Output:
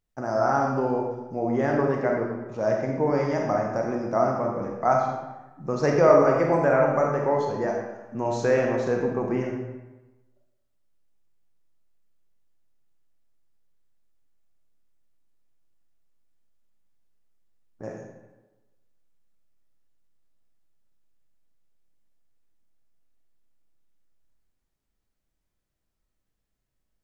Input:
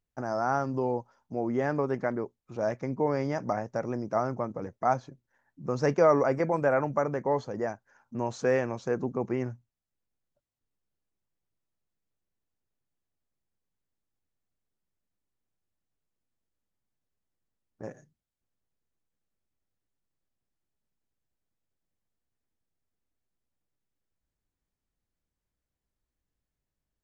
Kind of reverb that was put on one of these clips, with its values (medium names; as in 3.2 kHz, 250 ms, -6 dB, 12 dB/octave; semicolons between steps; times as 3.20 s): algorithmic reverb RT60 1.1 s, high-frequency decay 0.75×, pre-delay 0 ms, DRR -0.5 dB; trim +2 dB